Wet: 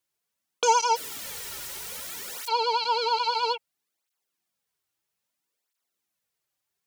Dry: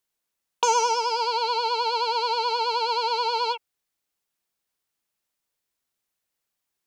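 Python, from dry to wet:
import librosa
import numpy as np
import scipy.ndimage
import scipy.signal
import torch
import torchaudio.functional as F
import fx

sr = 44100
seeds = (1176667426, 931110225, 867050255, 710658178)

y = fx.overflow_wrap(x, sr, gain_db=32.0, at=(0.95, 2.47), fade=0.02)
y = fx.flanger_cancel(y, sr, hz=0.61, depth_ms=4.7)
y = y * librosa.db_to_amplitude(2.5)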